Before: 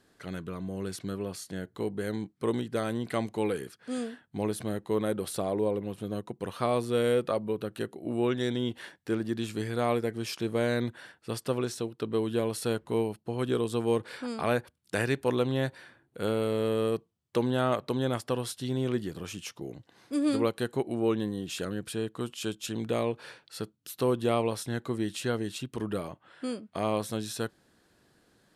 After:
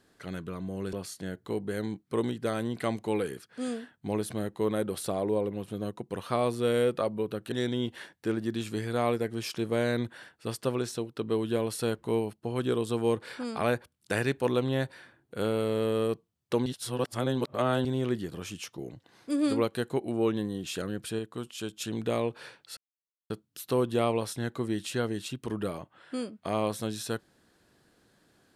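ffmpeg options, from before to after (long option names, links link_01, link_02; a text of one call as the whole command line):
ffmpeg -i in.wav -filter_complex "[0:a]asplit=8[link_01][link_02][link_03][link_04][link_05][link_06][link_07][link_08];[link_01]atrim=end=0.932[link_09];[link_02]atrim=start=1.228:end=7.822[link_10];[link_03]atrim=start=8.348:end=17.492[link_11];[link_04]atrim=start=17.488:end=18.682,asetpts=PTS-STARTPTS,areverse[link_12];[link_05]atrim=start=18.678:end=22.022[link_13];[link_06]atrim=start=22.018:end=22.562,asetpts=PTS-STARTPTS,volume=-3dB[link_14];[link_07]atrim=start=22.558:end=23.6,asetpts=PTS-STARTPTS,afade=type=out:start_time=1.038:duration=0.004:curve=hsin,apad=pad_dur=0.53[link_15];[link_08]atrim=start=23.6,asetpts=PTS-STARTPTS,afade=type=in:duration=0.004:curve=hsin[link_16];[link_09][link_10]acrossfade=duration=0.004:curve1=hsin:curve2=hsin[link_17];[link_17][link_11]acrossfade=duration=0.004:curve1=hsin:curve2=hsin[link_18];[link_18][link_12]acrossfade=duration=0.004:curve1=hsin:curve2=hsin[link_19];[link_19][link_13]acrossfade=duration=0.004:curve1=hsin:curve2=hsin[link_20];[link_20][link_14]acrossfade=duration=0.004:curve1=hsin:curve2=hsin[link_21];[link_15][link_16]concat=n=2:v=0:a=1[link_22];[link_21][link_22]acrossfade=duration=0.004:curve1=hsin:curve2=hsin" out.wav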